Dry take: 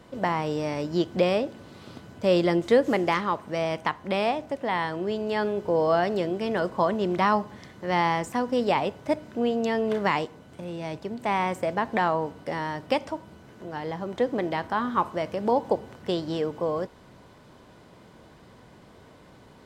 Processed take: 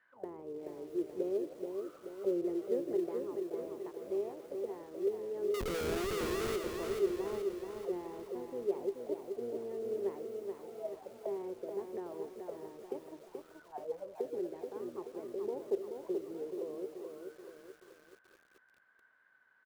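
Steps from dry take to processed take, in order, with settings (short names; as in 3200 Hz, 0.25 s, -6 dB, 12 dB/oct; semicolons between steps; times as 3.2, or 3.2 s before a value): octaver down 1 oct, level -5 dB; auto-wah 390–1800 Hz, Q 17, down, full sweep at -26 dBFS; in parallel at -12 dB: short-mantissa float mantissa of 2-bit; 5.54–6.56 on the sum: Schmitt trigger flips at -44 dBFS; on a send: frequency-shifting echo 0.158 s, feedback 32%, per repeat +120 Hz, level -20.5 dB; on the sum: lo-fi delay 0.43 s, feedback 55%, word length 10-bit, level -5 dB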